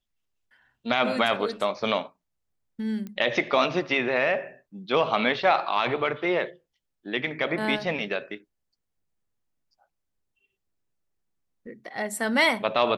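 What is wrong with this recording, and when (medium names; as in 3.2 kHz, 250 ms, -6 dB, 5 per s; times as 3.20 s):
3.07 s: pop -25 dBFS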